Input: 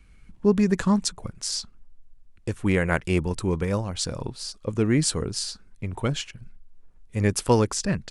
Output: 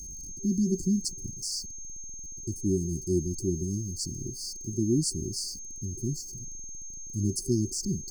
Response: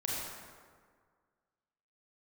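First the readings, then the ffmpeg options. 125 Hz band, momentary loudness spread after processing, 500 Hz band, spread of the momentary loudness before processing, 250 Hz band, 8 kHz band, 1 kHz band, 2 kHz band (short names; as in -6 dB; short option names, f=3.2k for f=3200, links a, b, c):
-5.0 dB, 12 LU, -8.5 dB, 12 LU, -4.0 dB, 0.0 dB, under -40 dB, under -40 dB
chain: -af "aeval=exprs='val(0)+0.5*0.0188*sgn(val(0))':c=same,afftfilt=real='re*(1-between(b*sr/4096,390,4300))':imag='im*(1-between(b*sr/4096,390,4300))':win_size=4096:overlap=0.75,adynamicequalizer=threshold=0.0112:dfrequency=390:dqfactor=2.1:tfrequency=390:tqfactor=2.1:attack=5:release=100:ratio=0.375:range=2.5:mode=boostabove:tftype=bell,aeval=exprs='val(0)+0.02*sin(2*PI*6400*n/s)':c=same,volume=-6dB"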